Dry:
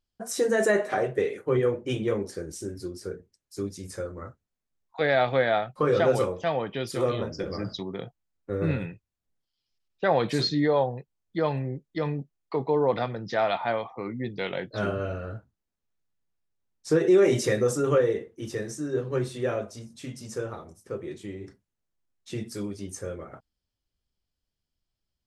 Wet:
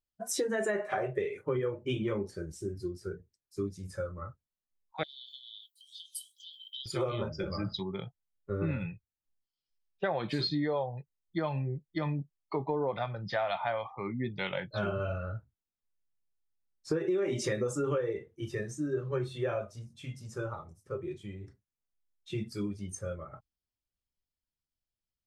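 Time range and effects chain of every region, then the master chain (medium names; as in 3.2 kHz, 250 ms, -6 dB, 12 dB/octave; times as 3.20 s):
5.03–6.86 s: tilt EQ +4.5 dB/octave + compression 12:1, threshold -28 dBFS + rippled Chebyshev high-pass 3 kHz, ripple 6 dB
whole clip: spectral noise reduction 11 dB; compression 6:1, threshold -28 dBFS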